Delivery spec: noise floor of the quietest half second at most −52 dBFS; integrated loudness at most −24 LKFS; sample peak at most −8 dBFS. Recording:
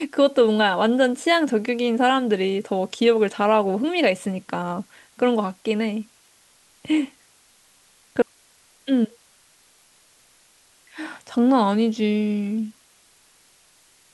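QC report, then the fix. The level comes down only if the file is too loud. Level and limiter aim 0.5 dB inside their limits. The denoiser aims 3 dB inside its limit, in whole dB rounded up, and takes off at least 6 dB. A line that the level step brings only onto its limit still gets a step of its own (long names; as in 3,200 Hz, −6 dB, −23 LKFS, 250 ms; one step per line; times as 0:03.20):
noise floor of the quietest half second −57 dBFS: in spec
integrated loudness −21.5 LKFS: out of spec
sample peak −6.0 dBFS: out of spec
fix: level −3 dB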